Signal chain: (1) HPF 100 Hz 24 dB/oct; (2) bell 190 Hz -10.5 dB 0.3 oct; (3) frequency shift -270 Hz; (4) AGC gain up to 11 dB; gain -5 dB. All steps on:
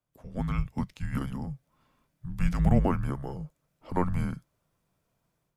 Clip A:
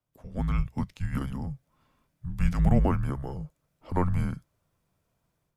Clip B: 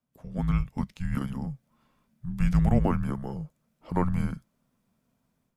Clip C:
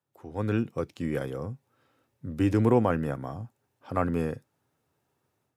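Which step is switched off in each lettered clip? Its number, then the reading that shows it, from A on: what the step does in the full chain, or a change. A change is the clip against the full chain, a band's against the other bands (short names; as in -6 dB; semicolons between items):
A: 2, 125 Hz band +1.5 dB; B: 1, 250 Hz band +2.0 dB; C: 3, 500 Hz band +5.5 dB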